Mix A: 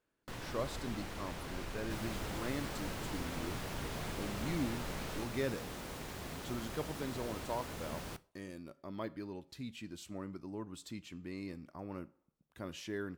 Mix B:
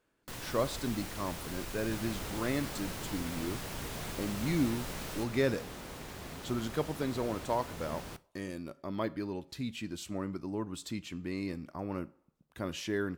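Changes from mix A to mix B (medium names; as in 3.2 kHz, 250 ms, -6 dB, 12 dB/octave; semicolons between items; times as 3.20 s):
speech +7.0 dB; first sound: remove low-pass 3 kHz 6 dB/octave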